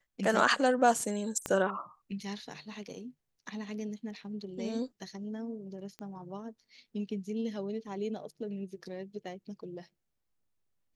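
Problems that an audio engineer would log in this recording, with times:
0:01.46: click −18 dBFS
0:05.99: click −28 dBFS

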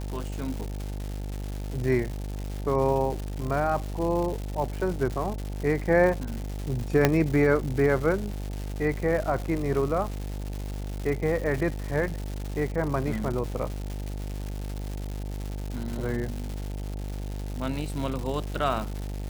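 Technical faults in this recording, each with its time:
mains buzz 50 Hz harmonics 18 −33 dBFS
surface crackle 330 per second −32 dBFS
0:07.05: click −5 dBFS

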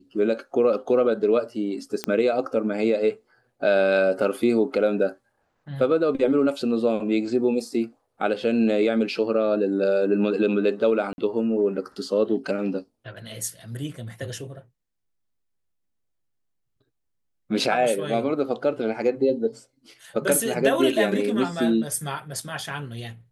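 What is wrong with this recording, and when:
0:02.04: click −10 dBFS
0:11.13–0:11.18: drop-out 51 ms

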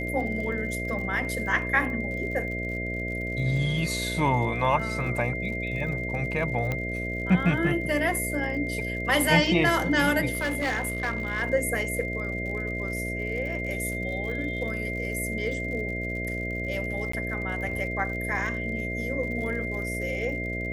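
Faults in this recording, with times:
mains buzz 60 Hz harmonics 11 −33 dBFS
surface crackle 66 per second −37 dBFS
whistle 2,100 Hz −32 dBFS
0:06.72: click −16 dBFS
0:10.33–0:11.43: clipping −23 dBFS
0:17.12–0:17.13: drop-out 14 ms

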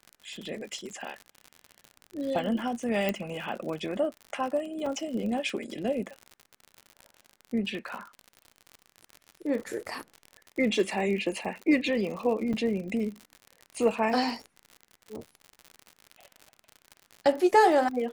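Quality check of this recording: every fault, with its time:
surface crackle 68 per second −35 dBFS
0:03.09: click −14 dBFS
0:04.86: drop-out 3.3 ms
0:12.53–0:12.54: drop-out 6.3 ms

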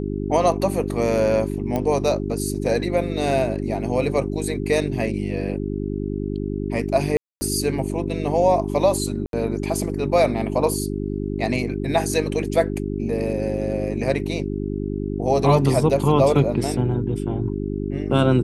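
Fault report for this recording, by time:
mains hum 50 Hz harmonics 8 −26 dBFS
0:01.76: click −12 dBFS
0:07.17–0:07.41: drop-out 240 ms
0:09.26–0:09.33: drop-out 72 ms

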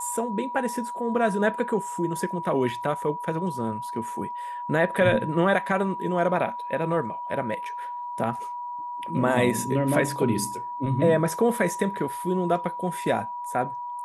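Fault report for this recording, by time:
whistle 970 Hz −31 dBFS

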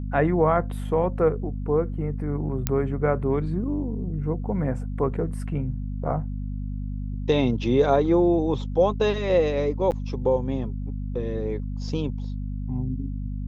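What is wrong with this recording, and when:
mains hum 50 Hz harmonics 5 −30 dBFS
0:02.67: click −7 dBFS
0:09.91–0:09.92: drop-out 9 ms

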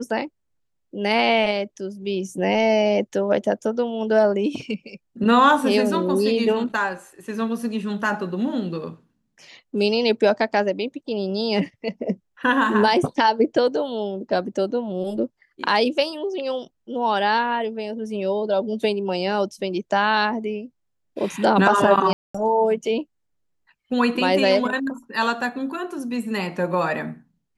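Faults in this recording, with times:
0:22.13–0:22.34: drop-out 215 ms

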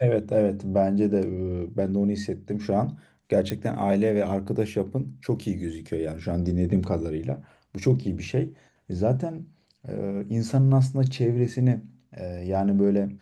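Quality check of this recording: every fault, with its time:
0:03.50: click −14 dBFS

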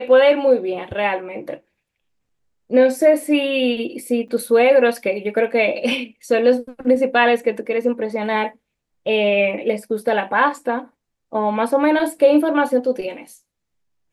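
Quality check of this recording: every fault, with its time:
0:04.28–0:04.29: drop-out 6 ms

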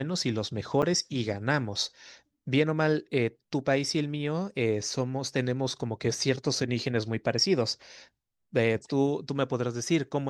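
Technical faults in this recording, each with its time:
0:00.82–0:00.83: drop-out 7.2 ms

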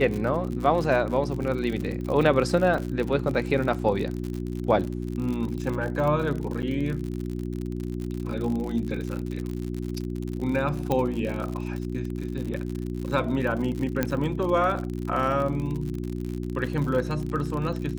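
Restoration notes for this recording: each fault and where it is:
surface crackle 59 per second −30 dBFS
mains hum 60 Hz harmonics 6 −31 dBFS
0:02.78: drop-out 2.8 ms
0:06.62–0:06.63: drop-out 8.4 ms
0:10.92: click −13 dBFS
0:14.03: click −10 dBFS

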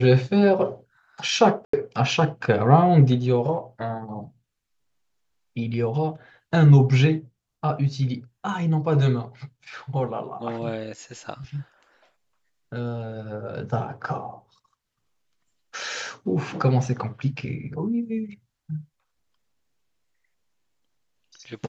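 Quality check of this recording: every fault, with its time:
0:01.65–0:01.73: drop-out 84 ms

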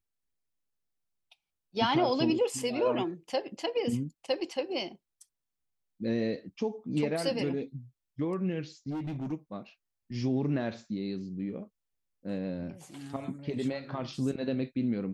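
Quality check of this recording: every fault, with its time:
0:08.90–0:09.33: clipping −32 dBFS

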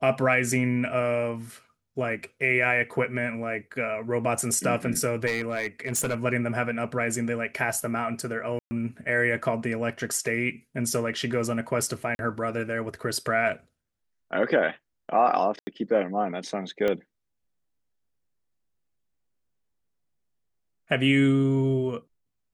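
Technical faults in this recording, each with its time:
0:05.26–0:06.15: clipping −22 dBFS
0:08.59–0:08.71: drop-out 120 ms
0:12.15–0:12.19: drop-out 41 ms
0:15.59–0:15.67: drop-out 80 ms
0:16.88: click −15 dBFS

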